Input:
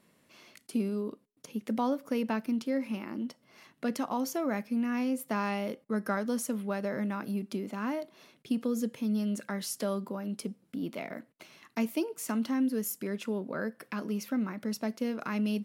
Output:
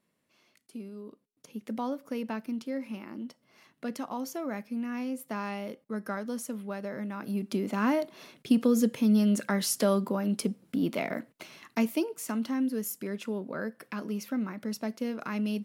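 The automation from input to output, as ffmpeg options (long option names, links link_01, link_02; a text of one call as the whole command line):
ffmpeg -i in.wav -af "volume=7dB,afade=type=in:start_time=0.93:duration=0.69:silence=0.421697,afade=type=in:start_time=7.13:duration=0.66:silence=0.298538,afade=type=out:start_time=11.19:duration=1.08:silence=0.421697" out.wav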